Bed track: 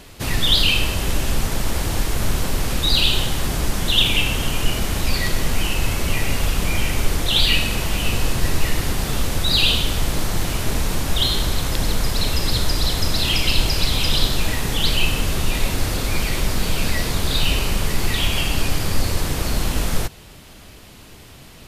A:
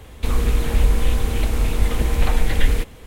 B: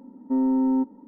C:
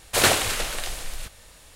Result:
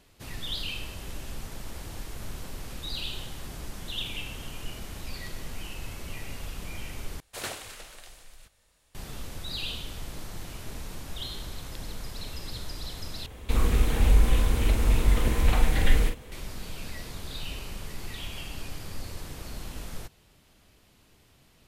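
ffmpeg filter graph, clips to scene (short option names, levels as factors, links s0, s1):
-filter_complex "[0:a]volume=0.133[s0];[1:a]asplit=2[s1][s2];[s2]adelay=44,volume=0.501[s3];[s1][s3]amix=inputs=2:normalize=0[s4];[s0]asplit=3[s5][s6][s7];[s5]atrim=end=7.204[s8];[3:a]atrim=end=1.75,asetpts=PTS-STARTPTS,volume=0.133[s9];[s6]atrim=start=8.946:end=13.264[s10];[s4]atrim=end=3.06,asetpts=PTS-STARTPTS,volume=0.631[s11];[s7]atrim=start=16.316[s12];[s8][s9]acrossfade=d=0.004:c1=hsin:c2=hsin[s13];[s13][s10]acrossfade=d=0.004:c1=hsin:c2=hsin[s14];[s14][s11]acrossfade=d=0.004:c1=hsin:c2=hsin[s15];[s15][s12]acrossfade=d=0.004:c1=hsin:c2=hsin"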